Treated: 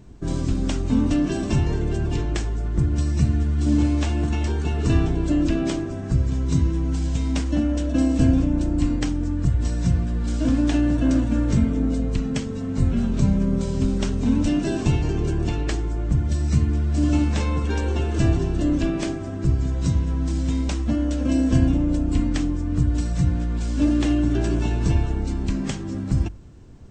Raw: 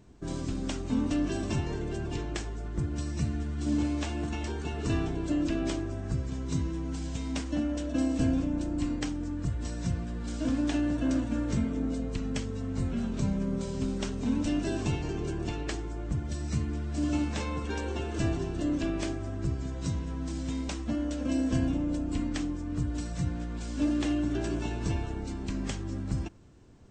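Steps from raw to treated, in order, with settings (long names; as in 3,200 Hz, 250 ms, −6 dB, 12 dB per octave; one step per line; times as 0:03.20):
low-shelf EQ 160 Hz +9 dB
mains-hum notches 50/100 Hz
level +5.5 dB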